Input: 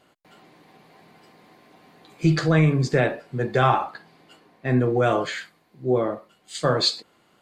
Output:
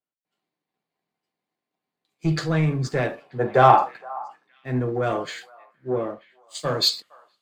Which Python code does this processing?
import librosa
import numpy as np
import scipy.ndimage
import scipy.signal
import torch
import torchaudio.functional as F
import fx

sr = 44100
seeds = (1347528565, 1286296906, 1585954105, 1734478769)

p1 = fx.leveller(x, sr, passes=1)
p2 = fx.peak_eq(p1, sr, hz=730.0, db=fx.line((3.21, 13.0), (3.84, 5.5)), octaves=1.5, at=(3.21, 3.84), fade=0.02)
p3 = p2 + fx.echo_stepped(p2, sr, ms=468, hz=960.0, octaves=1.4, feedback_pct=70, wet_db=-10.0, dry=0)
p4 = fx.band_widen(p3, sr, depth_pct=70)
y = p4 * librosa.db_to_amplitude(-7.0)